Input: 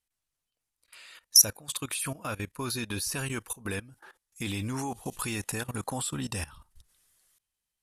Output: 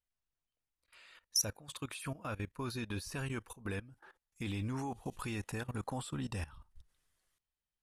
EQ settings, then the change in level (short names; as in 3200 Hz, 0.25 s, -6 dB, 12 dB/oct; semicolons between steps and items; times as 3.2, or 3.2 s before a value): LPF 2600 Hz 6 dB/oct; low shelf 84 Hz +6 dB; -5.5 dB